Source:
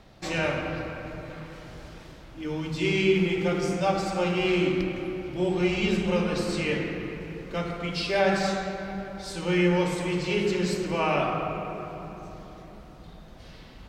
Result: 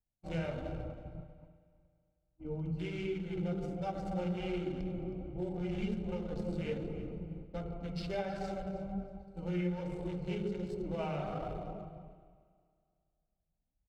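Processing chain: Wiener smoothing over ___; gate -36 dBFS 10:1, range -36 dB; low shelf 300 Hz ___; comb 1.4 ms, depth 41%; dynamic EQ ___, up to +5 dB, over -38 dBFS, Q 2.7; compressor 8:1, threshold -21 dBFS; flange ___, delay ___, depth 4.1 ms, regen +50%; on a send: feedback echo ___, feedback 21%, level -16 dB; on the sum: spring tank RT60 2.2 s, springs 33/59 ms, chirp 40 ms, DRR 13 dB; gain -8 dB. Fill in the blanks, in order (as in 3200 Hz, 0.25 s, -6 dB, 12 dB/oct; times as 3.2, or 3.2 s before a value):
25 samples, +10 dB, 430 Hz, 1.3 Hz, 2.1 ms, 0.318 s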